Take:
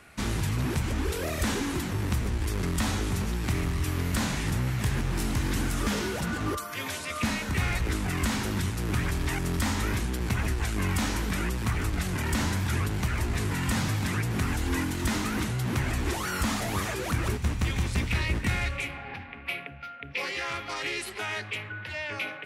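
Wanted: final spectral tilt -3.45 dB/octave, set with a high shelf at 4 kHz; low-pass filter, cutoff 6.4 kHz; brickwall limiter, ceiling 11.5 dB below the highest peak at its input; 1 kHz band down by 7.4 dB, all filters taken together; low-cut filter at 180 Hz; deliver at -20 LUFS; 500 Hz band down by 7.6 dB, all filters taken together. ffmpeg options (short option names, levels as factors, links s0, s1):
-af "highpass=180,lowpass=6400,equalizer=f=500:t=o:g=-9,equalizer=f=1000:t=o:g=-8,highshelf=f=4000:g=4.5,volume=6.31,alimiter=limit=0.282:level=0:latency=1"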